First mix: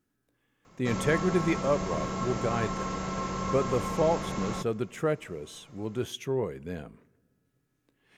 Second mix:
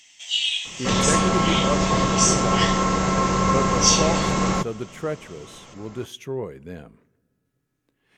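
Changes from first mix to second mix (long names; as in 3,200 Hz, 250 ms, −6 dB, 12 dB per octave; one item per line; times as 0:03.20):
first sound: unmuted
second sound +12.0 dB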